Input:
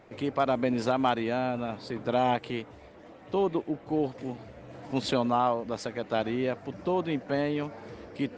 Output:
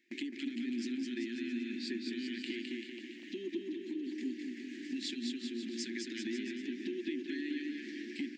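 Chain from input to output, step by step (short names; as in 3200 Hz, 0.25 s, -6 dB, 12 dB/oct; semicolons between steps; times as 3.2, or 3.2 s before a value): limiter -24 dBFS, peak gain reduction 11 dB; Chebyshev band-stop 360–1700 Hz, order 5; gate with hold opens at -46 dBFS; brick-wall FIR high-pass 210 Hz; compressor, threshold -41 dBFS, peak gain reduction 10.5 dB; on a send: bouncing-ball echo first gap 0.21 s, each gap 0.85×, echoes 5; on the sum: mismatched tape noise reduction encoder only; gain +4 dB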